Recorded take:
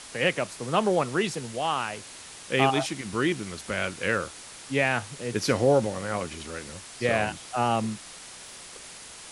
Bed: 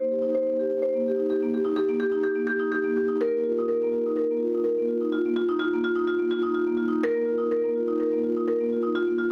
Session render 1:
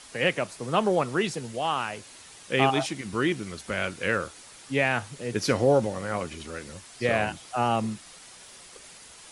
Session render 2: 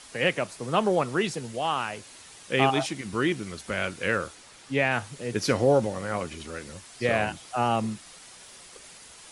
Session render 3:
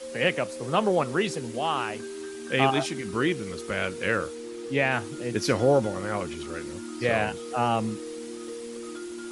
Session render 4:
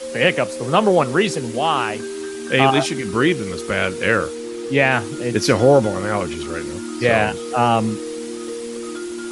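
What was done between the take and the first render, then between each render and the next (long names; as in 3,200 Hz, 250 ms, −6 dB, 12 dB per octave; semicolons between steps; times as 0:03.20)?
broadband denoise 6 dB, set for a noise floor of −45 dBFS
0:04.35–0:04.92: high-shelf EQ 8,500 Hz −9 dB
mix in bed −13 dB
level +8.5 dB; brickwall limiter −2 dBFS, peak gain reduction 2 dB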